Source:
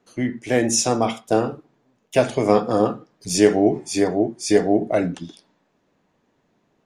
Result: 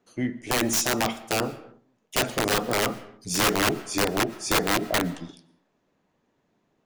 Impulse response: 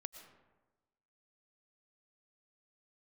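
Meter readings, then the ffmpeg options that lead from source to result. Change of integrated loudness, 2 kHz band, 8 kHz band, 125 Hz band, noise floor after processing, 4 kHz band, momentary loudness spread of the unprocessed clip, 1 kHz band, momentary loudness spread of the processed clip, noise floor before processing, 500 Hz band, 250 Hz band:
−4.5 dB, +3.5 dB, −2.0 dB, −4.5 dB, −72 dBFS, +3.0 dB, 10 LU, −2.5 dB, 9 LU, −68 dBFS, −9.5 dB, −8.0 dB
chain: -filter_complex "[0:a]aeval=exprs='0.794*(cos(1*acos(clip(val(0)/0.794,-1,1)))-cos(1*PI/2))+0.0794*(cos(2*acos(clip(val(0)/0.794,-1,1)))-cos(2*PI/2))+0.0112*(cos(5*acos(clip(val(0)/0.794,-1,1)))-cos(5*PI/2))+0.0316*(cos(7*acos(clip(val(0)/0.794,-1,1)))-cos(7*PI/2))':channel_layout=same,aeval=exprs='(mod(4.22*val(0)+1,2)-1)/4.22':channel_layout=same,asplit=2[link_01][link_02];[1:a]atrim=start_sample=2205,afade=type=out:start_time=0.37:duration=0.01,atrim=end_sample=16758[link_03];[link_02][link_03]afir=irnorm=-1:irlink=0,volume=-2dB[link_04];[link_01][link_04]amix=inputs=2:normalize=0,volume=-6dB"

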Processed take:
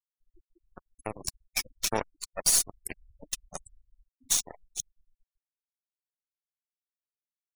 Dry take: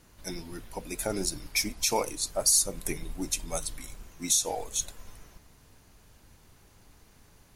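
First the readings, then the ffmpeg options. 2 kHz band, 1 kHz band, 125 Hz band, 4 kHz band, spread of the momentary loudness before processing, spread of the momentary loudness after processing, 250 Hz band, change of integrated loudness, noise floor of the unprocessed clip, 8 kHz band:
−2.5 dB, −4.0 dB, −6.5 dB, −2.5 dB, 18 LU, 20 LU, −9.0 dB, −1.0 dB, −59 dBFS, −2.5 dB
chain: -af "aeval=exprs='0.266*(cos(1*acos(clip(val(0)/0.266,-1,1)))-cos(1*PI/2))+0.00668*(cos(3*acos(clip(val(0)/0.266,-1,1)))-cos(3*PI/2))+0.0168*(cos(4*acos(clip(val(0)/0.266,-1,1)))-cos(4*PI/2))+0.0422*(cos(7*acos(clip(val(0)/0.266,-1,1)))-cos(7*PI/2))':channel_layout=same,afftfilt=real='re*gte(hypot(re,im),0.0158)':imag='im*gte(hypot(re,im),0.0158)':win_size=1024:overlap=0.75"

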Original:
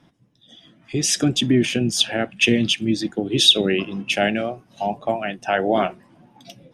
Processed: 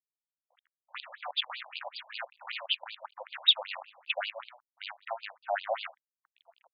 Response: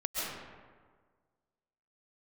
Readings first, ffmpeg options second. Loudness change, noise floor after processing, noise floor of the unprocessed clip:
−12.5 dB, below −85 dBFS, −59 dBFS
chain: -af "acrusher=bits=4:dc=4:mix=0:aa=0.000001,afftfilt=real='re*between(b*sr/1024,710*pow(3500/710,0.5+0.5*sin(2*PI*5.2*pts/sr))/1.41,710*pow(3500/710,0.5+0.5*sin(2*PI*5.2*pts/sr))*1.41)':imag='im*between(b*sr/1024,710*pow(3500/710,0.5+0.5*sin(2*PI*5.2*pts/sr))/1.41,710*pow(3500/710,0.5+0.5*sin(2*PI*5.2*pts/sr))*1.41)':win_size=1024:overlap=0.75,volume=-8dB"

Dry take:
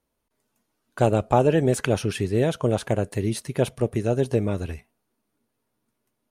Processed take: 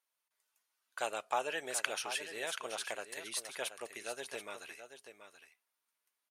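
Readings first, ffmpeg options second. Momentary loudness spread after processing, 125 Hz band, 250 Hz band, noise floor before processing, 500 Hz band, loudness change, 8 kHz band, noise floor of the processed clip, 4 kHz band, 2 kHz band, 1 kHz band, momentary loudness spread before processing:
17 LU, below −40 dB, −29.5 dB, −78 dBFS, −19.5 dB, −15.5 dB, −3.0 dB, below −85 dBFS, −3.0 dB, −4.0 dB, −11.5 dB, 8 LU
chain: -af "highpass=1300,aecho=1:1:730:0.299,volume=-3.5dB"

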